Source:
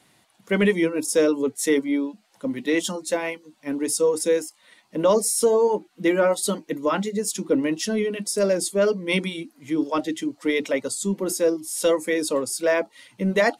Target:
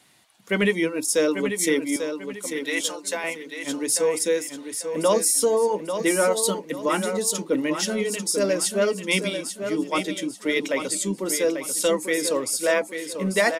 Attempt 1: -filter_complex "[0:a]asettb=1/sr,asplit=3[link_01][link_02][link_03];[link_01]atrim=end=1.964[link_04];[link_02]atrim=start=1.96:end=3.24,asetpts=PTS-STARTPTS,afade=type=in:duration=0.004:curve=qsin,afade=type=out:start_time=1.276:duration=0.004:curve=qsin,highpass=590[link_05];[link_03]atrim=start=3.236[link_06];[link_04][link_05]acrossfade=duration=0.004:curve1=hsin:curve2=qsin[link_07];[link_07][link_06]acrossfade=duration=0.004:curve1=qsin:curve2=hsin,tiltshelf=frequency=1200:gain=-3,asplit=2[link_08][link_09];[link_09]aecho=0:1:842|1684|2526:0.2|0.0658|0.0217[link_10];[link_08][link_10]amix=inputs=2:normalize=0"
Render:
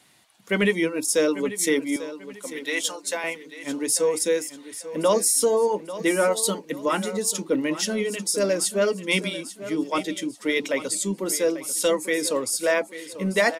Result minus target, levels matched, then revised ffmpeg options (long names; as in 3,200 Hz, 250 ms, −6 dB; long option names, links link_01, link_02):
echo-to-direct −6 dB
-filter_complex "[0:a]asettb=1/sr,asplit=3[link_01][link_02][link_03];[link_01]atrim=end=1.964[link_04];[link_02]atrim=start=1.96:end=3.24,asetpts=PTS-STARTPTS,afade=type=in:duration=0.004:curve=qsin,afade=type=out:start_time=1.276:duration=0.004:curve=qsin,highpass=590[link_05];[link_03]atrim=start=3.236[link_06];[link_04][link_05]acrossfade=duration=0.004:curve1=hsin:curve2=qsin[link_07];[link_07][link_06]acrossfade=duration=0.004:curve1=qsin:curve2=hsin,tiltshelf=frequency=1200:gain=-3,asplit=2[link_08][link_09];[link_09]aecho=0:1:842|1684|2526|3368:0.398|0.131|0.0434|0.0143[link_10];[link_08][link_10]amix=inputs=2:normalize=0"